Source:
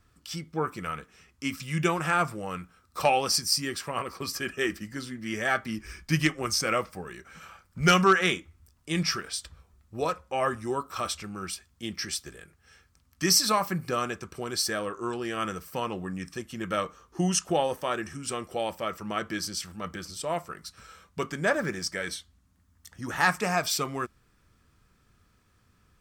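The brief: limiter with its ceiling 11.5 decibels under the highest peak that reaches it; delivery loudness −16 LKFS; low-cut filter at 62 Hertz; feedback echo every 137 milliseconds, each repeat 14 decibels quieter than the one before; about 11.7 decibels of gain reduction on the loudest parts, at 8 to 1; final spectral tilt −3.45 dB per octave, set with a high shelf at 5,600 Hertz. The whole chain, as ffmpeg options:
ffmpeg -i in.wav -af "highpass=62,highshelf=frequency=5600:gain=6,acompressor=threshold=-27dB:ratio=8,alimiter=level_in=0.5dB:limit=-24dB:level=0:latency=1,volume=-0.5dB,aecho=1:1:137|274:0.2|0.0399,volume=20dB" out.wav

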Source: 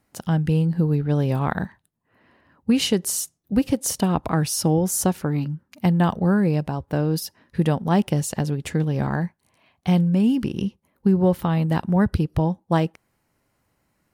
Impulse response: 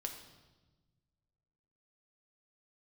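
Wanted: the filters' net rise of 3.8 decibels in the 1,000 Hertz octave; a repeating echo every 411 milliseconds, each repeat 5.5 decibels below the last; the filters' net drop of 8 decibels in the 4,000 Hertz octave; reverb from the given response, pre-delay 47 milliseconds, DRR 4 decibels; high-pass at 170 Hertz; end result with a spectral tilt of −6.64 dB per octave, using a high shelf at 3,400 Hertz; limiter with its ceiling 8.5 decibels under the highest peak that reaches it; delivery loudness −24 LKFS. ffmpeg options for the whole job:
-filter_complex "[0:a]highpass=170,equalizer=frequency=1000:width_type=o:gain=6,highshelf=frequency=3400:gain=-9,equalizer=frequency=4000:width_type=o:gain=-5.5,alimiter=limit=-12.5dB:level=0:latency=1,aecho=1:1:411|822|1233|1644|2055|2466|2877:0.531|0.281|0.149|0.079|0.0419|0.0222|0.0118,asplit=2[link_01][link_02];[1:a]atrim=start_sample=2205,adelay=47[link_03];[link_02][link_03]afir=irnorm=-1:irlink=0,volume=-2.5dB[link_04];[link_01][link_04]amix=inputs=2:normalize=0,volume=-1dB"

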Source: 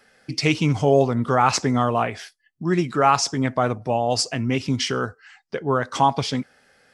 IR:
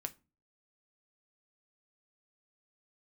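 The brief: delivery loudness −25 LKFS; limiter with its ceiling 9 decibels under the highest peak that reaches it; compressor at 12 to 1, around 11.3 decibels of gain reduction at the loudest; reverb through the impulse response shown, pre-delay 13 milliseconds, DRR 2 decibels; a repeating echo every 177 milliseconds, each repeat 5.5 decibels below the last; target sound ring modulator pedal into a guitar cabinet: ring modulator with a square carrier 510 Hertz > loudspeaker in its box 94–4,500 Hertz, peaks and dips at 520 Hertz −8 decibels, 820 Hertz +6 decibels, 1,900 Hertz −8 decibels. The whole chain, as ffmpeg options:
-filter_complex "[0:a]acompressor=threshold=-23dB:ratio=12,alimiter=limit=-20.5dB:level=0:latency=1,aecho=1:1:177|354|531|708|885|1062|1239:0.531|0.281|0.149|0.079|0.0419|0.0222|0.0118,asplit=2[link_01][link_02];[1:a]atrim=start_sample=2205,adelay=13[link_03];[link_02][link_03]afir=irnorm=-1:irlink=0,volume=0dB[link_04];[link_01][link_04]amix=inputs=2:normalize=0,aeval=exprs='val(0)*sgn(sin(2*PI*510*n/s))':channel_layout=same,highpass=94,equalizer=frequency=520:width_type=q:width=4:gain=-8,equalizer=frequency=820:width_type=q:width=4:gain=6,equalizer=frequency=1900:width_type=q:width=4:gain=-8,lowpass=frequency=4500:width=0.5412,lowpass=frequency=4500:width=1.3066,volume=3dB"

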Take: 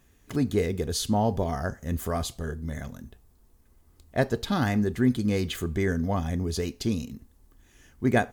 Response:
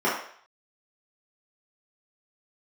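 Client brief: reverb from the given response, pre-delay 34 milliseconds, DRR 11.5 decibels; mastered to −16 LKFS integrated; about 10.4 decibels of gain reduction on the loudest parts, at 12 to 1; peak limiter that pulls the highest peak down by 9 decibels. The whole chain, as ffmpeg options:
-filter_complex "[0:a]acompressor=threshold=-28dB:ratio=12,alimiter=level_in=3dB:limit=-24dB:level=0:latency=1,volume=-3dB,asplit=2[link_01][link_02];[1:a]atrim=start_sample=2205,adelay=34[link_03];[link_02][link_03]afir=irnorm=-1:irlink=0,volume=-27.5dB[link_04];[link_01][link_04]amix=inputs=2:normalize=0,volume=21.5dB"

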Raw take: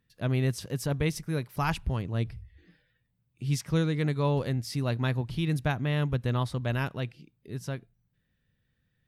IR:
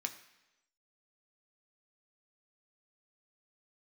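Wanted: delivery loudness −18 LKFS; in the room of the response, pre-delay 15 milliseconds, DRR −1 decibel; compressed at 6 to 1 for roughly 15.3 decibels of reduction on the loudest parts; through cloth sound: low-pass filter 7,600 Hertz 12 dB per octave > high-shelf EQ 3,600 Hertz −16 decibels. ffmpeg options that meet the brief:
-filter_complex "[0:a]acompressor=threshold=-39dB:ratio=6,asplit=2[link_01][link_02];[1:a]atrim=start_sample=2205,adelay=15[link_03];[link_02][link_03]afir=irnorm=-1:irlink=0,volume=0.5dB[link_04];[link_01][link_04]amix=inputs=2:normalize=0,lowpass=7600,highshelf=frequency=3600:gain=-16,volume=23.5dB"

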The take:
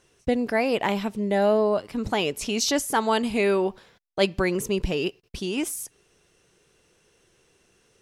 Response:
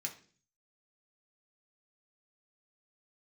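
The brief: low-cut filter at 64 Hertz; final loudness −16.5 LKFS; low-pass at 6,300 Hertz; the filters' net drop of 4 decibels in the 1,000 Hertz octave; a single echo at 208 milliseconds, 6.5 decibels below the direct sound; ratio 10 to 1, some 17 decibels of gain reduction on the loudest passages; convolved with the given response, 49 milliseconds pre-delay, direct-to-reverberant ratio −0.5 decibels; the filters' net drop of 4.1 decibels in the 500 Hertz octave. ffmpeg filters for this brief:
-filter_complex "[0:a]highpass=64,lowpass=6300,equalizer=frequency=500:width_type=o:gain=-4.5,equalizer=frequency=1000:width_type=o:gain=-3.5,acompressor=threshold=-37dB:ratio=10,aecho=1:1:208:0.473,asplit=2[link_01][link_02];[1:a]atrim=start_sample=2205,adelay=49[link_03];[link_02][link_03]afir=irnorm=-1:irlink=0,volume=1.5dB[link_04];[link_01][link_04]amix=inputs=2:normalize=0,volume=21dB"

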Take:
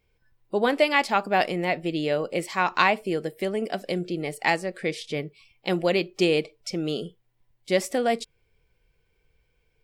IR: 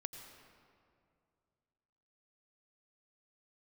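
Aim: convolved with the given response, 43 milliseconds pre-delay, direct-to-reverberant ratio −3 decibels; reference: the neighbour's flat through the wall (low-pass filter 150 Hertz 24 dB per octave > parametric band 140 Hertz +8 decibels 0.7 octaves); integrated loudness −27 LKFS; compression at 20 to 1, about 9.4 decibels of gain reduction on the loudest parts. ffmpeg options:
-filter_complex "[0:a]acompressor=threshold=-25dB:ratio=20,asplit=2[link_01][link_02];[1:a]atrim=start_sample=2205,adelay=43[link_03];[link_02][link_03]afir=irnorm=-1:irlink=0,volume=5.5dB[link_04];[link_01][link_04]amix=inputs=2:normalize=0,lowpass=frequency=150:width=0.5412,lowpass=frequency=150:width=1.3066,equalizer=frequency=140:width_type=o:width=0.7:gain=8,volume=11.5dB"

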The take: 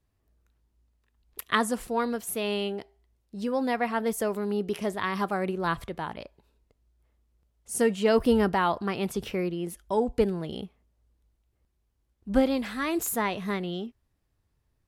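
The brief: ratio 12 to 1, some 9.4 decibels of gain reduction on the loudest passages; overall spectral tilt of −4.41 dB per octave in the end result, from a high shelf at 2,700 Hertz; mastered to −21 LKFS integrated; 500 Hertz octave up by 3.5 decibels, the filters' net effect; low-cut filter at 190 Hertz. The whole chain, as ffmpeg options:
ffmpeg -i in.wav -af "highpass=190,equalizer=frequency=500:width_type=o:gain=4.5,highshelf=frequency=2700:gain=-5.5,acompressor=threshold=-24dB:ratio=12,volume=10dB" out.wav

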